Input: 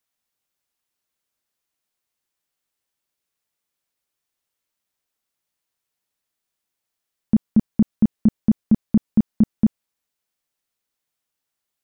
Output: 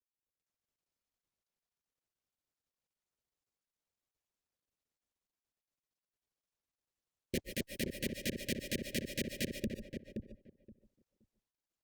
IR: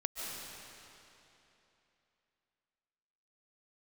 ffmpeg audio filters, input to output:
-filter_complex "[0:a]firequalizer=gain_entry='entry(100,0);entry(170,-13);entry(260,-8);entry(840,3);entry(1300,-29);entry(1900,-24)':delay=0.05:min_phase=1,acrossover=split=100|300|710[link_01][link_02][link_03][link_04];[link_01]acompressor=threshold=-32dB:ratio=4[link_05];[link_02]acompressor=threshold=-25dB:ratio=4[link_06];[link_03]acompressor=threshold=-41dB:ratio=4[link_07];[link_04]acompressor=threshold=-55dB:ratio=4[link_08];[link_05][link_06][link_07][link_08]amix=inputs=4:normalize=0,alimiter=limit=-23dB:level=0:latency=1:release=260,asplit=3[link_09][link_10][link_11];[link_09]afade=type=out:start_time=7.34:duration=0.02[link_12];[link_10]acontrast=75,afade=type=in:start_time=7.34:duration=0.02,afade=type=out:start_time=9.54:duration=0.02[link_13];[link_11]afade=type=in:start_time=9.54:duration=0.02[link_14];[link_12][link_13][link_14]amix=inputs=3:normalize=0,aeval=exprs='(mod(15.8*val(0)+1,2)-1)/15.8':channel_layout=same,asuperstop=centerf=1000:order=20:qfactor=0.87,asplit=2[link_15][link_16];[link_16]adelay=523,lowpass=frequency=830:poles=1,volume=-4dB,asplit=2[link_17][link_18];[link_18]adelay=523,lowpass=frequency=830:poles=1,volume=0.18,asplit=2[link_19][link_20];[link_20]adelay=523,lowpass=frequency=830:poles=1,volume=0.18[link_21];[link_15][link_17][link_19][link_21]amix=inputs=4:normalize=0[link_22];[1:a]atrim=start_sample=2205,afade=type=out:start_time=0.2:duration=0.01,atrim=end_sample=9261[link_23];[link_22][link_23]afir=irnorm=-1:irlink=0,volume=-1dB" -ar 48000 -c:a libopus -b:a 48k

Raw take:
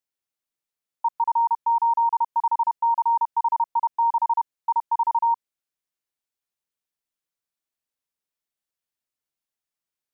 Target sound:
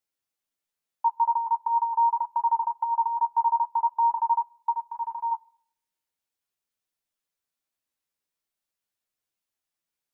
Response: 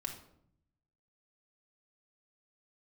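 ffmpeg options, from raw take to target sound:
-filter_complex "[0:a]asplit=3[link_01][link_02][link_03];[link_01]afade=type=out:start_time=4.7:duration=0.02[link_04];[link_02]equalizer=frequency=640:width=0.57:gain=-13,afade=type=in:start_time=4.7:duration=0.02,afade=type=out:start_time=5.31:duration=0.02[link_05];[link_03]afade=type=in:start_time=5.31:duration=0.02[link_06];[link_04][link_05][link_06]amix=inputs=3:normalize=0,acompressor=threshold=-22dB:ratio=6,flanger=delay=9.3:depth=3.7:regen=22:speed=0.44:shape=sinusoidal,asplit=2[link_07][link_08];[1:a]atrim=start_sample=2205[link_09];[link_08][link_09]afir=irnorm=-1:irlink=0,volume=-18dB[link_10];[link_07][link_10]amix=inputs=2:normalize=0,volume=4dB"

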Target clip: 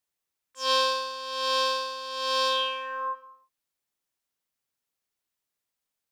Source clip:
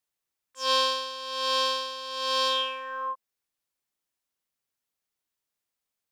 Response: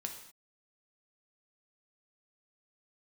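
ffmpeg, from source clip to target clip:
-filter_complex "[0:a]asplit=2[link_01][link_02];[1:a]atrim=start_sample=2205,adelay=86[link_03];[link_02][link_03]afir=irnorm=-1:irlink=0,volume=-10.5dB[link_04];[link_01][link_04]amix=inputs=2:normalize=0"

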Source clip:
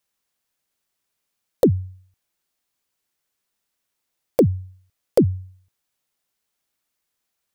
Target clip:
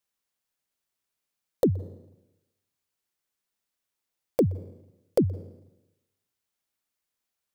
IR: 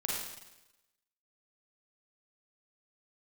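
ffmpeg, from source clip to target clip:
-filter_complex "[0:a]asplit=2[link_01][link_02];[1:a]atrim=start_sample=2205,highshelf=frequency=5300:gain=-7.5,adelay=123[link_03];[link_02][link_03]afir=irnorm=-1:irlink=0,volume=-25dB[link_04];[link_01][link_04]amix=inputs=2:normalize=0,volume=-6.5dB"

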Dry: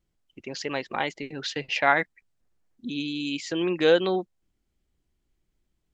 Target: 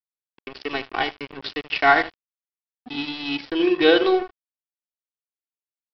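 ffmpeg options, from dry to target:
ffmpeg -i in.wav -filter_complex "[0:a]aecho=1:1:2.7:0.88,asplit=2[link_01][link_02];[link_02]adelay=77,lowpass=frequency=1200:poles=1,volume=-7.5dB,asplit=2[link_03][link_04];[link_04]adelay=77,lowpass=frequency=1200:poles=1,volume=0.36,asplit=2[link_05][link_06];[link_06]adelay=77,lowpass=frequency=1200:poles=1,volume=0.36,asplit=2[link_07][link_08];[link_08]adelay=77,lowpass=frequency=1200:poles=1,volume=0.36[link_09];[link_01][link_03][link_05][link_07][link_09]amix=inputs=5:normalize=0,aresample=11025,aeval=exprs='sgn(val(0))*max(abs(val(0))-0.0266,0)':channel_layout=same,aresample=44100,equalizer=frequency=2900:width=1.5:gain=2,volume=3dB" out.wav

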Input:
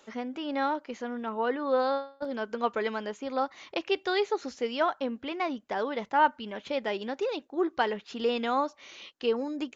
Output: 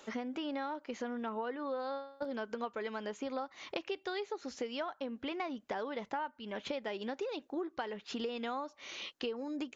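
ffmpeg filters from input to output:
ffmpeg -i in.wav -af "acompressor=threshold=-38dB:ratio=12,volume=3dB" out.wav

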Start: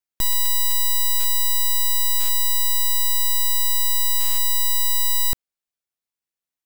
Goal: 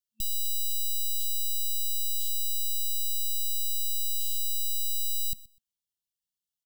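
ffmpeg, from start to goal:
ffmpeg -i in.wav -af "volume=26.5dB,asoftclip=hard,volume=-26.5dB,aecho=1:1:125|250:0.0891|0.0169,afftfilt=real='re*(1-between(b*sr/4096,220,2700))':imag='im*(1-between(b*sr/4096,220,2700))':win_size=4096:overlap=0.75,volume=-1dB" out.wav

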